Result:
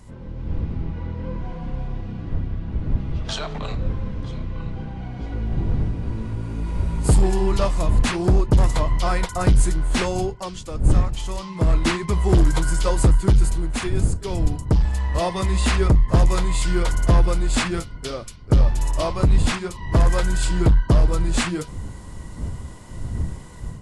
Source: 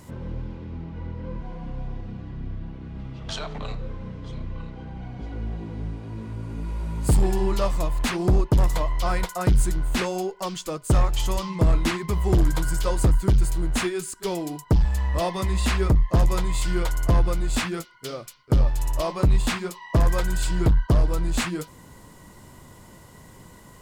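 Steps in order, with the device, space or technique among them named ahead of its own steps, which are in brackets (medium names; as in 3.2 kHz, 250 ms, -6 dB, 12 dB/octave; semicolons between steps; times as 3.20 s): smartphone video outdoors (wind noise 84 Hz; level rider gain up to 8 dB; trim -4 dB; AAC 48 kbps 24 kHz)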